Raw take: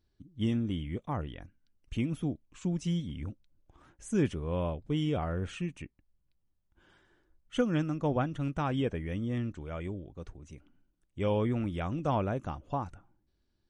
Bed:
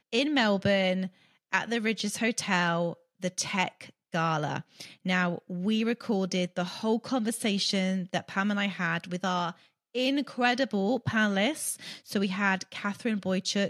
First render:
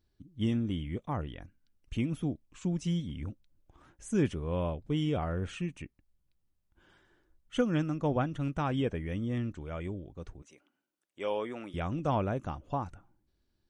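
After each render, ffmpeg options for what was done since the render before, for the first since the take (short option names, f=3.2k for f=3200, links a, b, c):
-filter_complex "[0:a]asettb=1/sr,asplit=3[a][b][c];[a]atrim=end=10.424[d];[b]atrim=start=10.42:end=11.74,asetpts=PTS-STARTPTS,afade=t=in:d=0.004:c=qsin,afade=t=out:st=1.316:d=0.004:c=qsin,highpass=450[e];[c]atrim=start=11.736[f];[d][e]acrossfade=d=0.004:c1=hsin:c2=qsin[g];[g][f]acrossfade=d=0.004:c1=qsin:c2=hsin"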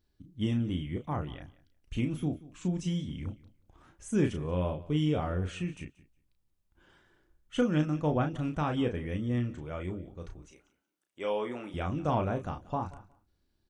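-filter_complex "[0:a]asplit=2[a][b];[b]adelay=33,volume=-6dB[c];[a][c]amix=inputs=2:normalize=0,aecho=1:1:181|362:0.1|0.016"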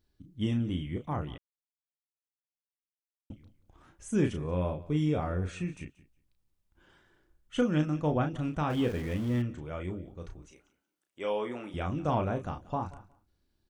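-filter_complex "[0:a]asettb=1/sr,asplit=3[a][b][c];[a]atrim=end=4.394[d];[b]atrim=start=4.39:end=5.81,asetpts=PTS-STARTPTS,afade=t=in:d=0.004:c=qsin,afade=t=out:st=1.416:d=0.004:c=qsin,bandreject=f=3k:w=5.8[e];[c]atrim=start=5.806[f];[d][e]acrossfade=d=0.004:c1=hsin:c2=qsin[g];[g][f]acrossfade=d=0.004:c1=qsin:c2=hsin,asettb=1/sr,asplit=3[h][i][j];[h]atrim=end=8.704[k];[i]atrim=start=8.7:end=9.42,asetpts=PTS-STARTPTS,afade=t=in:d=0.004:c=qsin,afade=t=out:st=0.716:d=0.004:c=qsin,aeval=exprs='val(0)+0.5*0.01*sgn(val(0))':c=same[l];[j]atrim=start=9.416[m];[k][l]acrossfade=d=0.004:c1=hsin:c2=qsin[n];[n][m]acrossfade=d=0.004:c1=qsin:c2=hsin,asplit=3[o][p][q];[o]atrim=end=1.38,asetpts=PTS-STARTPTS,afade=t=out:st=1.376:d=0.004:c=hsin[r];[p]atrim=start=1.38:end=3.3,asetpts=PTS-STARTPTS,volume=0[s];[q]atrim=start=3.3,asetpts=PTS-STARTPTS,afade=t=in:d=0.004:c=hsin[t];[r][s][t]concat=n=3:v=0:a=1"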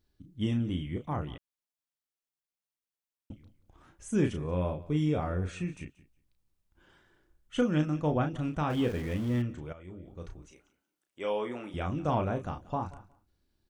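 -filter_complex "[0:a]asplit=2[a][b];[a]atrim=end=9.73,asetpts=PTS-STARTPTS,afade=t=out:st=9.726:d=0.004:c=hsin:silence=0.211349[c];[b]atrim=start=9.73,asetpts=PTS-STARTPTS,afade=t=in:d=0.42:c=qua:silence=0.211349[d];[c][d]concat=n=2:v=0:a=1"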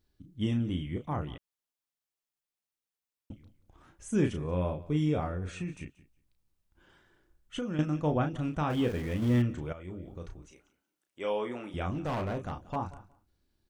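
-filter_complex "[0:a]asettb=1/sr,asplit=3[a][b][c];[a]atrim=end=5.264[d];[b]atrim=start=5.26:end=7.79,asetpts=PTS-STARTPTS,afade=t=in:d=0.004:c=qsin,afade=t=out:st=2.526:d=0.004:c=qsin,acompressor=threshold=-30dB:ratio=6:attack=3.2:release=140:knee=1:detection=peak[e];[c]atrim=start=7.786[f];[d][e]acrossfade=d=0.004:c1=hsin:c2=qsin[g];[g][f]acrossfade=d=0.004:c1=qsin:c2=hsin,asettb=1/sr,asplit=3[h][i][j];[h]atrim=end=11.914[k];[i]atrim=start=11.91:end=12.76,asetpts=PTS-STARTPTS,afade=t=in:d=0.004:c=qsin,afade=t=out:st=0.846:d=0.004:c=qsin,asoftclip=type=hard:threshold=-29.5dB[l];[j]atrim=start=12.756[m];[k][l]acrossfade=d=0.004:c1=hsin:c2=qsin[n];[n][m]acrossfade=d=0.004:c1=qsin:c2=hsin,asplit=3[o][p][q];[o]atrim=end=9.222[r];[p]atrim=start=9.218:end=10.182,asetpts=PTS-STARTPTS,volume=4dB[s];[q]atrim=start=10.178[t];[r][s]acrossfade=d=0.004:c1=hsin:c2=hsin[u];[u][t]acrossfade=d=0.004:c1=hsin:c2=hsin"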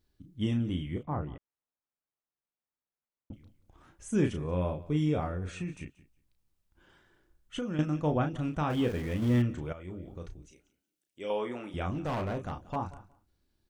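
-filter_complex "[0:a]asettb=1/sr,asplit=3[a][b][c];[a]atrim=end=1.034[d];[b]atrim=start=1.03:end=3.33,asetpts=PTS-STARTPTS,afade=t=in:d=0.004:c=qsin,afade=t=out:st=2.296:d=0.004:c=qsin,lowpass=1.5k[e];[c]atrim=start=3.326[f];[d][e]acrossfade=d=0.004:c1=hsin:c2=qsin[g];[g][f]acrossfade=d=0.004:c1=qsin:c2=hsin,asettb=1/sr,asplit=3[h][i][j];[h]atrim=end=10.284[k];[i]atrim=start=10.28:end=11.3,asetpts=PTS-STARTPTS,afade=t=in:d=0.004:c=qsin,afade=t=out:st=1.016:d=0.004:c=qsin,equalizer=f=1.1k:w=0.94:g=-13[l];[j]atrim=start=11.296[m];[k][l]acrossfade=d=0.004:c1=hsin:c2=qsin[n];[n][m]acrossfade=d=0.004:c1=qsin:c2=hsin"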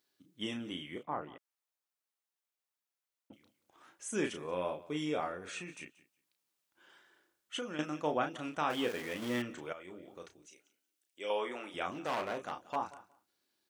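-af "highpass=330,tiltshelf=f=900:g=-3.5"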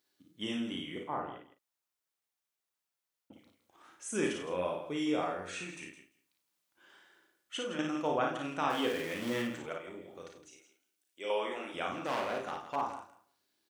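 -filter_complex "[0:a]asplit=2[a][b];[b]adelay=43,volume=-11dB[c];[a][c]amix=inputs=2:normalize=0,aecho=1:1:55.39|163.3:0.631|0.282"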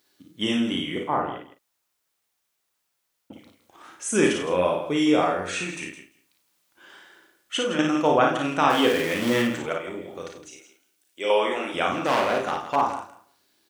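-af "volume=12dB"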